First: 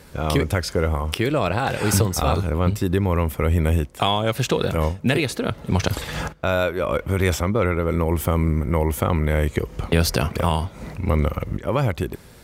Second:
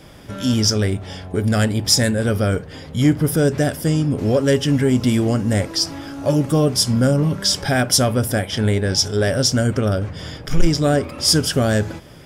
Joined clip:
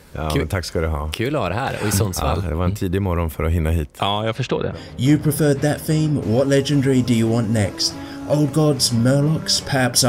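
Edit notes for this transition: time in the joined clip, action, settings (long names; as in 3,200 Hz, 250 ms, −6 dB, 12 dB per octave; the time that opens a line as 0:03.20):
first
0:04.21–0:04.80: low-pass filter 10,000 Hz → 1,300 Hz
0:04.74: continue with second from 0:02.70, crossfade 0.12 s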